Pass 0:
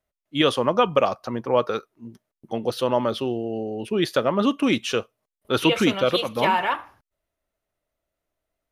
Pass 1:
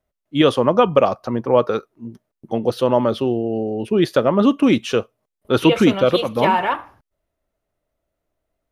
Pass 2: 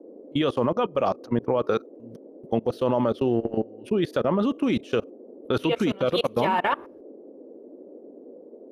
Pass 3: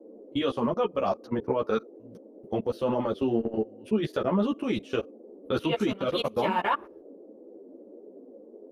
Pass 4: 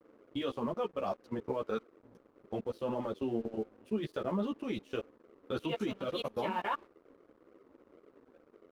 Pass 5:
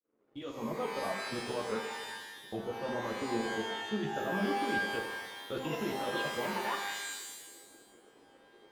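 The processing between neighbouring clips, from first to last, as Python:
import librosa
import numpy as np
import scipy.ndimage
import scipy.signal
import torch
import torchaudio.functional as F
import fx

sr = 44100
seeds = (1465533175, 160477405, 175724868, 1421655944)

y1 = fx.tilt_shelf(x, sr, db=4.0, hz=1100.0)
y1 = y1 * librosa.db_to_amplitude(3.0)
y2 = fx.level_steps(y1, sr, step_db=22)
y2 = fx.transient(y2, sr, attack_db=1, sustain_db=-4)
y2 = fx.dmg_noise_band(y2, sr, seeds[0], low_hz=240.0, high_hz=540.0, level_db=-45.0)
y3 = fx.ensemble(y2, sr)
y4 = np.sign(y3) * np.maximum(np.abs(y3) - 10.0 ** (-51.5 / 20.0), 0.0)
y4 = y4 * librosa.db_to_amplitude(-8.0)
y5 = fx.fade_in_head(y4, sr, length_s=0.77)
y5 = fx.wow_flutter(y5, sr, seeds[1], rate_hz=2.1, depth_cents=35.0)
y5 = fx.rev_shimmer(y5, sr, seeds[2], rt60_s=1.2, semitones=12, shimmer_db=-2, drr_db=3.5)
y5 = y5 * librosa.db_to_amplitude(-3.0)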